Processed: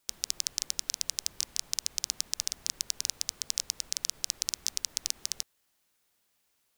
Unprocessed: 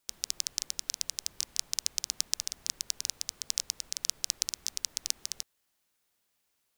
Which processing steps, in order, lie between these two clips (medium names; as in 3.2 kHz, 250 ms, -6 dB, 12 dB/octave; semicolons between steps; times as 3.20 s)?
loudness maximiser +8 dB; trim -5 dB